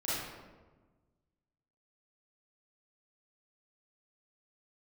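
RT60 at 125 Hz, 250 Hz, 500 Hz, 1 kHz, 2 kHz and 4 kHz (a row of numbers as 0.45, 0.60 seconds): 1.9, 1.7, 1.4, 1.2, 0.95, 0.75 seconds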